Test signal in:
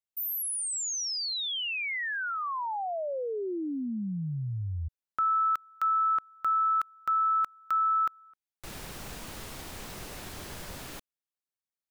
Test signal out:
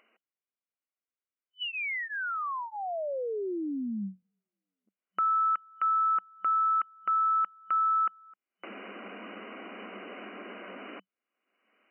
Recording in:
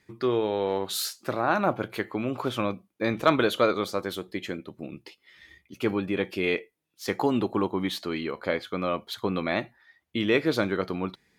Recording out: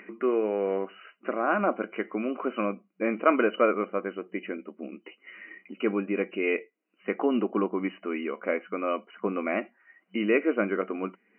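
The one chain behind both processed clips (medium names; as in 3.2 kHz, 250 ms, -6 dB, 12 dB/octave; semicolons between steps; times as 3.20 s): comb of notches 880 Hz; upward compressor, threshold -34 dBFS; FFT band-pass 190–3000 Hz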